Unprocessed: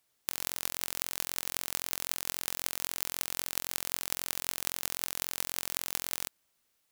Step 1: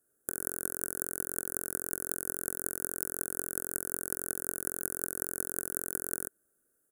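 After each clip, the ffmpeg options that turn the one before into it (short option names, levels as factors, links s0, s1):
-af "firequalizer=gain_entry='entry(120,0);entry(390,11);entry(970,-16);entry(1500,6);entry(2200,-27);entry(4100,-29);entry(6900,-5);entry(9900,6);entry(15000,-3)':delay=0.05:min_phase=1"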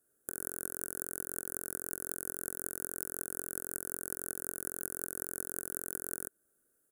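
-af "alimiter=limit=0.251:level=0:latency=1:release=374"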